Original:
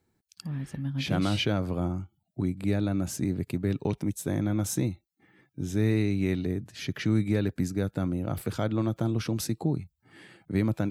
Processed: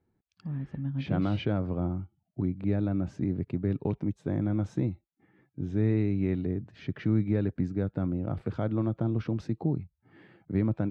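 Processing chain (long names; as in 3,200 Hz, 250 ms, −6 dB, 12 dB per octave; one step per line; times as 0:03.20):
head-to-tape spacing loss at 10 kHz 38 dB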